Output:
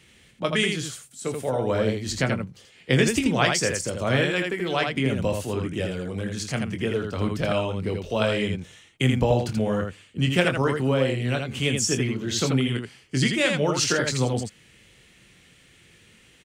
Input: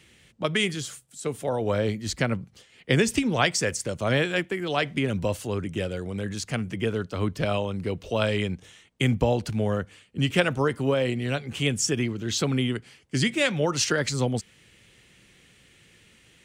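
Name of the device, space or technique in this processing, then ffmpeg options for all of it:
slapback doubling: -filter_complex "[0:a]asplit=3[link_01][link_02][link_03];[link_02]adelay=23,volume=-8dB[link_04];[link_03]adelay=82,volume=-4.5dB[link_05];[link_01][link_04][link_05]amix=inputs=3:normalize=0"

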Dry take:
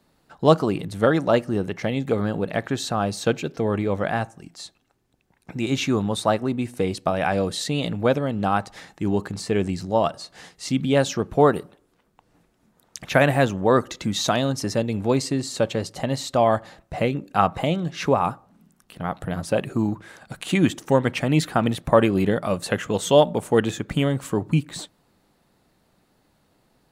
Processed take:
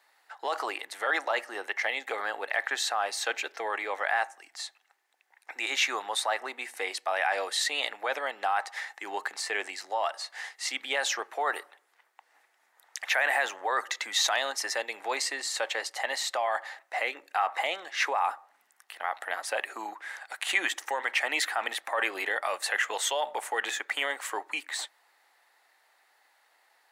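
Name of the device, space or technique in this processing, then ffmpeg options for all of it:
laptop speaker: -af "highpass=frequency=310:width=0.5412,highpass=frequency=310:width=1.3066,equalizer=frequency=810:width_type=o:width=0.45:gain=7,equalizer=frequency=1900:width_type=o:width=0.5:gain=10.5,alimiter=limit=-13.5dB:level=0:latency=1:release=18,highpass=930"

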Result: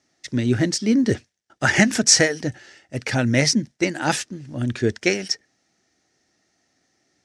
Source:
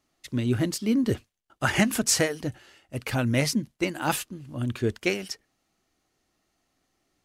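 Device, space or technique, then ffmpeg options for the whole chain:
car door speaker: -af "highpass=97,equalizer=frequency=1100:width_type=q:width=4:gain=-9,equalizer=frequency=1800:width_type=q:width=4:gain=6,equalizer=frequency=2900:width_type=q:width=4:gain=-4,equalizer=frequency=5600:width_type=q:width=4:gain=8,lowpass=frequency=8500:width=0.5412,lowpass=frequency=8500:width=1.3066,volume=5.5dB"

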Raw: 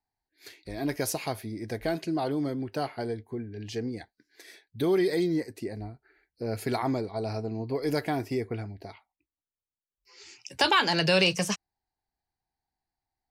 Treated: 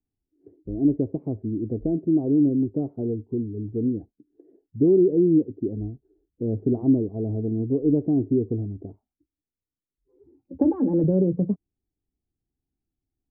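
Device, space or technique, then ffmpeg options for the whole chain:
under water: -filter_complex "[0:a]asettb=1/sr,asplit=3[link_01][link_02][link_03];[link_01]atrim=end=10.344[link_04];[link_02]atrim=start=10.34:end=11.04,asetpts=PTS-STARTPTS,afade=type=in:duration=0.004:curve=qsin,afade=type=out:start_time=0.696:duration=0.004:curve=qsin,aecho=1:1:3.7:0.98,atrim=end_sample=30870[link_05];[link_03]atrim=start=11.036[link_06];[link_04][link_05]acrossfade=duration=0.004:curve1=hsin:curve2=qsin[link_07];[link_07][link_06]acrossfade=duration=0.004:curve1=qsin:curve2=hsin,lowpass=frequency=410:width=0.5412,lowpass=frequency=410:width=1.3066,equalizer=frequency=280:width_type=o:width=0.43:gain=5,volume=7.5dB"

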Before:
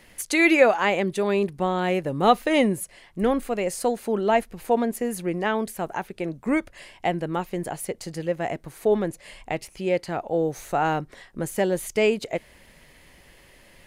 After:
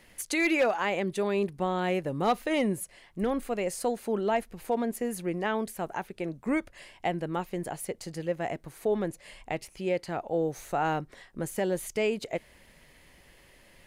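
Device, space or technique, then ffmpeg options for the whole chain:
clipper into limiter: -af "asoftclip=type=hard:threshold=-11dB,alimiter=limit=-14dB:level=0:latency=1:release=77,volume=-4.5dB"

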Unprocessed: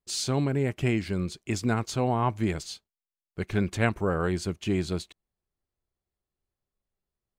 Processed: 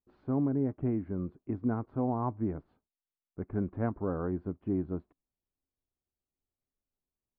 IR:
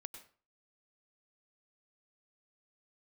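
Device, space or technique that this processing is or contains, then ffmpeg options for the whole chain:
under water: -af "lowpass=frequency=1200:width=0.5412,lowpass=frequency=1200:width=1.3066,equalizer=frequency=270:width_type=o:width=0.33:gain=9.5,volume=-7dB"

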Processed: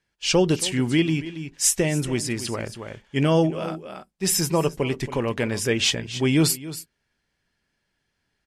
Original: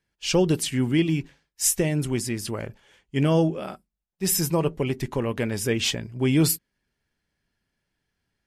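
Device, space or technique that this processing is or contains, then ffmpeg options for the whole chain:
ducked delay: -filter_complex "[0:a]lowshelf=frequency=450:gain=-4.5,asplit=3[link_01][link_02][link_03];[link_02]adelay=276,volume=-5dB[link_04];[link_03]apad=whole_len=385531[link_05];[link_04][link_05]sidechaincompress=threshold=-36dB:ratio=5:attack=8.5:release=411[link_06];[link_01][link_06]amix=inputs=2:normalize=0,lowpass=9500,volume=4dB"

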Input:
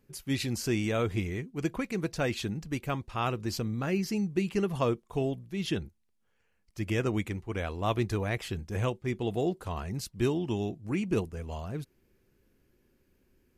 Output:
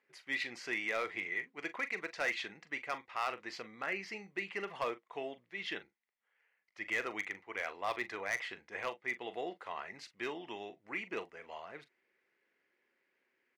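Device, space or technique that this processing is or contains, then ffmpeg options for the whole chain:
megaphone: -filter_complex "[0:a]asettb=1/sr,asplit=3[link_01][link_02][link_03];[link_01]atrim=end=1.324[link_04];[link_02]atrim=start=1.32:end=2.57,asetpts=PTS-STARTPTS,afade=type=in:duration=0.004:curve=qsin,afade=type=out:start_time=1.246:duration=0.004:curve=qsin,highshelf=frequency=2200:gain=2.5[link_05];[link_03]atrim=start=2.566[link_06];[link_04][link_05]acrossfade=duration=0.004:curve1=hsin:curve2=qsin[link_07];[link_07][link_06]acrossfade=duration=0.004:curve1=qsin:curve2=hsin,highpass=690,lowpass=3200,equalizer=frequency=2000:width_type=o:width=0.32:gain=11.5,asoftclip=type=hard:threshold=-25.5dB,asplit=2[link_08][link_09];[link_09]adelay=41,volume=-13dB[link_10];[link_08][link_10]amix=inputs=2:normalize=0,volume=-2dB"

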